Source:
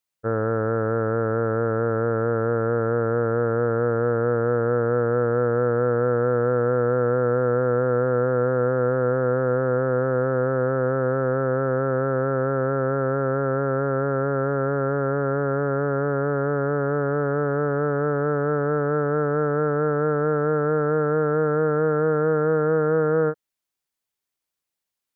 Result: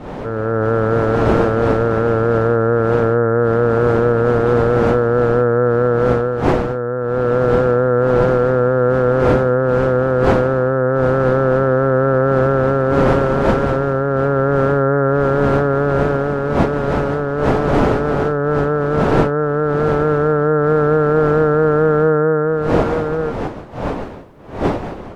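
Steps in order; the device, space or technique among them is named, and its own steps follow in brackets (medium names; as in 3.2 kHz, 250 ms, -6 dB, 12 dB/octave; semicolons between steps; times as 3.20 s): smartphone video outdoors (wind noise 580 Hz -27 dBFS; level rider; trim -1 dB; AAC 96 kbps 44.1 kHz)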